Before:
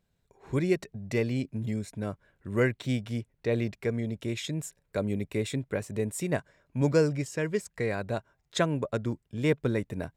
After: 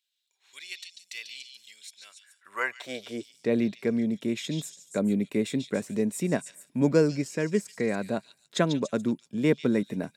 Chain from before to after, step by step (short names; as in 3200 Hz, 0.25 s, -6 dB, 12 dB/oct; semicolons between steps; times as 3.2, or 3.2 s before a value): high-pass sweep 3300 Hz -> 210 Hz, 2–3.44; on a send: delay with a stepping band-pass 0.143 s, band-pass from 4300 Hz, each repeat 0.7 oct, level -3 dB